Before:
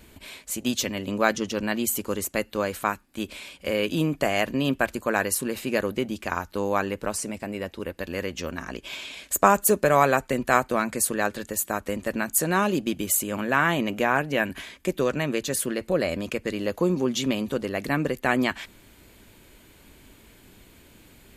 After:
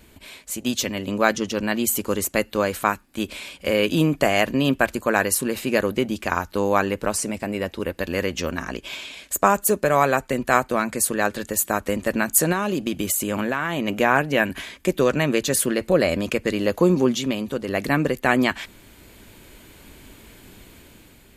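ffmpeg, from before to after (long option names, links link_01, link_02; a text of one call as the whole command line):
ffmpeg -i in.wav -filter_complex "[0:a]asettb=1/sr,asplit=3[link_01][link_02][link_03];[link_01]atrim=end=12.524[link_04];[link_02]atrim=start=12.52:end=13.88,asetpts=PTS-STARTPTS,afade=type=in:duration=0.004:curve=qsin,afade=type=out:start_time=1.356:duration=0.004:curve=qsin,acompressor=threshold=-24dB:ratio=6:attack=3.2:release=140:knee=1:detection=peak[link_05];[link_03]atrim=start=13.876[link_06];[link_04][link_05]acrossfade=duration=0.004:curve1=hsin:curve2=qsin[link_07];[link_07][link_06]acrossfade=duration=0.004:curve1=qsin:curve2=hsin,asplit=3[link_08][link_09][link_10];[link_08]atrim=end=17.152[link_11];[link_09]atrim=start=17.148:end=17.682,asetpts=PTS-STARTPTS,volume=-5dB[link_12];[link_10]atrim=start=17.678[link_13];[link_11][link_12]acrossfade=duration=0.004:curve1=hsin:curve2=hsin[link_14];[link_14][link_13]acrossfade=duration=0.004:curve1=hsin:curve2=hsin,dynaudnorm=framelen=190:gausssize=7:maxgain=6dB" out.wav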